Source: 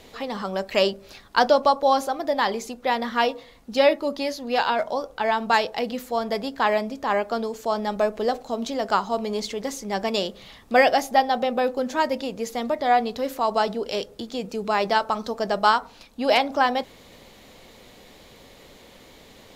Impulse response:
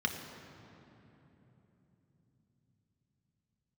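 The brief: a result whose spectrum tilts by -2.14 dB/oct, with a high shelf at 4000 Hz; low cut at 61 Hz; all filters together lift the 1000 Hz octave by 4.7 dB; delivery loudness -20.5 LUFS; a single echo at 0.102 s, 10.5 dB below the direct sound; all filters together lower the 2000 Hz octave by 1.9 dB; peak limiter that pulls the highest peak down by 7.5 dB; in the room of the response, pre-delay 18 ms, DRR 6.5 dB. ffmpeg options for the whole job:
-filter_complex "[0:a]highpass=61,equalizer=f=1k:t=o:g=7,equalizer=f=2k:t=o:g=-6.5,highshelf=f=4k:g=6,alimiter=limit=-10dB:level=0:latency=1,aecho=1:1:102:0.299,asplit=2[a][b];[1:a]atrim=start_sample=2205,adelay=18[c];[b][c]afir=irnorm=-1:irlink=0,volume=-13dB[d];[a][d]amix=inputs=2:normalize=0,volume=1.5dB"

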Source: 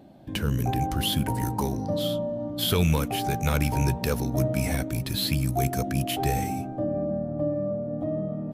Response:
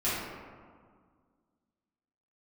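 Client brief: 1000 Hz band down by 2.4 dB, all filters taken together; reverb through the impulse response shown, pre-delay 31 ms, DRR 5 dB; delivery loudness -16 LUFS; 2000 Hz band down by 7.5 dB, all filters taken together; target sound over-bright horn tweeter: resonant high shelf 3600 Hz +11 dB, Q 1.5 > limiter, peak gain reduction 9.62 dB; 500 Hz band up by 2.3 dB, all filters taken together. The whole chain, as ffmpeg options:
-filter_complex "[0:a]equalizer=f=500:t=o:g=5,equalizer=f=1k:t=o:g=-4.5,equalizer=f=2k:t=o:g=-6.5,asplit=2[a][b];[1:a]atrim=start_sample=2205,adelay=31[c];[b][c]afir=irnorm=-1:irlink=0,volume=-15dB[d];[a][d]amix=inputs=2:normalize=0,highshelf=f=3.6k:t=q:w=1.5:g=11,volume=9.5dB,alimiter=limit=-5.5dB:level=0:latency=1"

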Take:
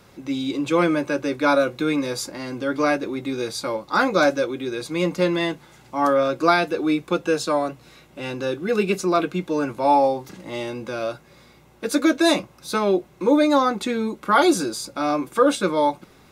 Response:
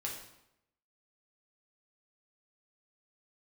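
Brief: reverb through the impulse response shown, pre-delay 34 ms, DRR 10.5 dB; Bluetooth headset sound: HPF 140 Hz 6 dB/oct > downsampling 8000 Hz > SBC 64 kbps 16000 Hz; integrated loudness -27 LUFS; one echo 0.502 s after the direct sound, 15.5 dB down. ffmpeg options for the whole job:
-filter_complex "[0:a]aecho=1:1:502:0.168,asplit=2[a][b];[1:a]atrim=start_sample=2205,adelay=34[c];[b][c]afir=irnorm=-1:irlink=0,volume=-11.5dB[d];[a][d]amix=inputs=2:normalize=0,highpass=f=140:p=1,aresample=8000,aresample=44100,volume=-5dB" -ar 16000 -c:a sbc -b:a 64k

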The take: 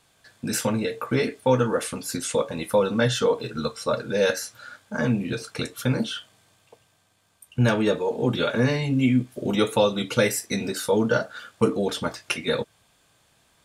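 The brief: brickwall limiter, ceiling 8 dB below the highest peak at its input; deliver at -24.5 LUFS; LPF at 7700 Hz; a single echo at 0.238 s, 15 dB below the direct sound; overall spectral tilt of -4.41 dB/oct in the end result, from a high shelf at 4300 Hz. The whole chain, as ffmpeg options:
-af "lowpass=7.7k,highshelf=f=4.3k:g=7.5,alimiter=limit=-13.5dB:level=0:latency=1,aecho=1:1:238:0.178,volume=1dB"

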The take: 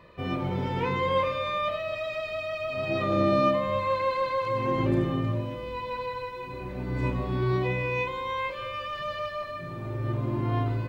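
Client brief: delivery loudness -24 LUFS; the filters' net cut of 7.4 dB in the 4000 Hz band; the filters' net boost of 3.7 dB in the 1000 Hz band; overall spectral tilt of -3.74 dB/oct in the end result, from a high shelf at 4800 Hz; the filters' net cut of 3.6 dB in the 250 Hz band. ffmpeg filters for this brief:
-af "equalizer=f=250:t=o:g=-5.5,equalizer=f=1k:t=o:g=5,equalizer=f=4k:t=o:g=-7.5,highshelf=f=4.8k:g=-6.5,volume=4dB"

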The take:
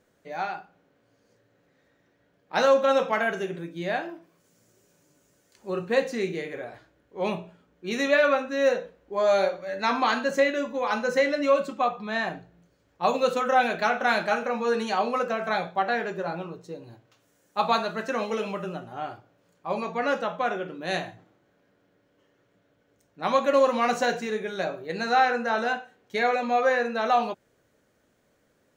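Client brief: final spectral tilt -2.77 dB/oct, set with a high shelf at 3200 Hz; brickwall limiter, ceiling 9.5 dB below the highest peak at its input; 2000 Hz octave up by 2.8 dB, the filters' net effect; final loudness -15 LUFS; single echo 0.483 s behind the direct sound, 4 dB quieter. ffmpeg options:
-af "equalizer=f=2k:t=o:g=5.5,highshelf=f=3.2k:g=-6,alimiter=limit=-17.5dB:level=0:latency=1,aecho=1:1:483:0.631,volume=12.5dB"

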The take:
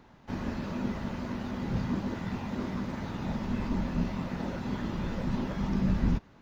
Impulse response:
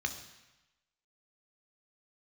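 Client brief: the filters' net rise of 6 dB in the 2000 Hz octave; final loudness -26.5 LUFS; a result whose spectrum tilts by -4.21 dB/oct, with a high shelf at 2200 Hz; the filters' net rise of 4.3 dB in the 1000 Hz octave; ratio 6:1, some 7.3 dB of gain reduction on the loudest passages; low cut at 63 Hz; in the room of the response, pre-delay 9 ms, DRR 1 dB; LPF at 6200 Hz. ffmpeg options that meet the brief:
-filter_complex "[0:a]highpass=63,lowpass=6.2k,equalizer=f=1k:t=o:g=4,equalizer=f=2k:t=o:g=8.5,highshelf=f=2.2k:g=-4.5,acompressor=threshold=-31dB:ratio=6,asplit=2[a][b];[1:a]atrim=start_sample=2205,adelay=9[c];[b][c]afir=irnorm=-1:irlink=0,volume=-5dB[d];[a][d]amix=inputs=2:normalize=0,volume=8.5dB"

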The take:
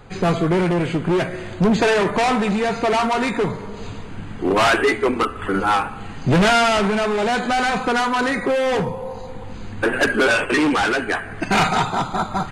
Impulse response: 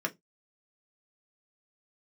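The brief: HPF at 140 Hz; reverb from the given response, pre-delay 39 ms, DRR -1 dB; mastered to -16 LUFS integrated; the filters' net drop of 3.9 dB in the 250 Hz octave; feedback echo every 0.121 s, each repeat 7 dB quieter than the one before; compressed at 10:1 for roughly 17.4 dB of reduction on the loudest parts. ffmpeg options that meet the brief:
-filter_complex "[0:a]highpass=140,equalizer=f=250:t=o:g=-4.5,acompressor=threshold=-32dB:ratio=10,aecho=1:1:121|242|363|484|605:0.447|0.201|0.0905|0.0407|0.0183,asplit=2[a][b];[1:a]atrim=start_sample=2205,adelay=39[c];[b][c]afir=irnorm=-1:irlink=0,volume=-5dB[d];[a][d]amix=inputs=2:normalize=0,volume=14.5dB"

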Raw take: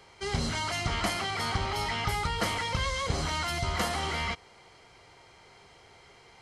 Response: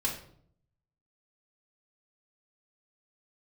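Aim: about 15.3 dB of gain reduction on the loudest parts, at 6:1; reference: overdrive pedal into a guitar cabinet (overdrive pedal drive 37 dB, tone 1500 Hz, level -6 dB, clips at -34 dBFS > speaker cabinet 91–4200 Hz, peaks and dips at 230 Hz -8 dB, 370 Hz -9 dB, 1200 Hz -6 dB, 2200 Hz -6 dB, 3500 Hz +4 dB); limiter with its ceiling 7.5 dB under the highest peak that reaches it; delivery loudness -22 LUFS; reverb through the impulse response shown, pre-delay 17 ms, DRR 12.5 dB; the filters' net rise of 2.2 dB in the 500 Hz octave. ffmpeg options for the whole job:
-filter_complex "[0:a]equalizer=f=500:t=o:g=6,acompressor=threshold=-41dB:ratio=6,alimiter=level_in=12.5dB:limit=-24dB:level=0:latency=1,volume=-12.5dB,asplit=2[a][b];[1:a]atrim=start_sample=2205,adelay=17[c];[b][c]afir=irnorm=-1:irlink=0,volume=-18dB[d];[a][d]amix=inputs=2:normalize=0,asplit=2[e][f];[f]highpass=f=720:p=1,volume=37dB,asoftclip=type=tanh:threshold=-34dB[g];[e][g]amix=inputs=2:normalize=0,lowpass=f=1.5k:p=1,volume=-6dB,highpass=91,equalizer=f=230:t=q:w=4:g=-8,equalizer=f=370:t=q:w=4:g=-9,equalizer=f=1.2k:t=q:w=4:g=-6,equalizer=f=2.2k:t=q:w=4:g=-6,equalizer=f=3.5k:t=q:w=4:g=4,lowpass=f=4.2k:w=0.5412,lowpass=f=4.2k:w=1.3066,volume=22dB"

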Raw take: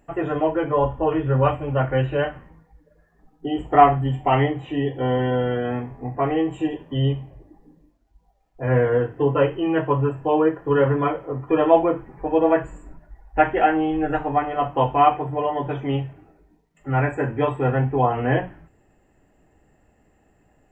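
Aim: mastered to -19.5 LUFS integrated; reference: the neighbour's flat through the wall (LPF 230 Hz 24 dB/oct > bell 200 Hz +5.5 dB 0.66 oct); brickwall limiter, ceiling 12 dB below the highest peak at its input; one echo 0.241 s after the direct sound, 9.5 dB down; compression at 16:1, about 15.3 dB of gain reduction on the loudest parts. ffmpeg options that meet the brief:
-af "acompressor=threshold=-23dB:ratio=16,alimiter=level_in=1.5dB:limit=-24dB:level=0:latency=1,volume=-1.5dB,lowpass=f=230:w=0.5412,lowpass=f=230:w=1.3066,equalizer=f=200:t=o:w=0.66:g=5.5,aecho=1:1:241:0.335,volume=19dB"

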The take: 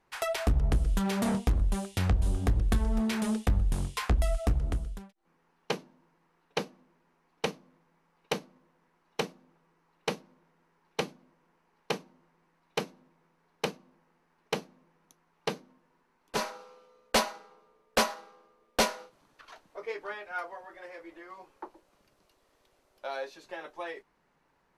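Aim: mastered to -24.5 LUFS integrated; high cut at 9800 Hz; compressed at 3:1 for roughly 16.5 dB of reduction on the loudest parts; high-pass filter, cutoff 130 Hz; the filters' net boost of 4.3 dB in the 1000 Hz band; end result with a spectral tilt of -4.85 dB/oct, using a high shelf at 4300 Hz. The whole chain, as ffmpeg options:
-af "highpass=130,lowpass=9.8k,equalizer=f=1k:t=o:g=5.5,highshelf=f=4.3k:g=-3,acompressor=threshold=-42dB:ratio=3,volume=20.5dB"

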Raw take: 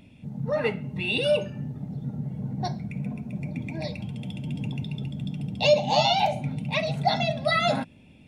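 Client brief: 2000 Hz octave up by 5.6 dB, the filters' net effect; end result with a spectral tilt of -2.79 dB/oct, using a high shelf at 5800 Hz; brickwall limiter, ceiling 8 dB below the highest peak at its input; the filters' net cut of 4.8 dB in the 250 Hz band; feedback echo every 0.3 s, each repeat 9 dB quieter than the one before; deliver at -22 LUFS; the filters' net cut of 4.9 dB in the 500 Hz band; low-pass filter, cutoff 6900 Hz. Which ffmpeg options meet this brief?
-af "lowpass=6.9k,equalizer=f=250:t=o:g=-6.5,equalizer=f=500:t=o:g=-6,equalizer=f=2k:t=o:g=6.5,highshelf=f=5.8k:g=6,alimiter=limit=-17dB:level=0:latency=1,aecho=1:1:300|600|900|1200:0.355|0.124|0.0435|0.0152,volume=7dB"

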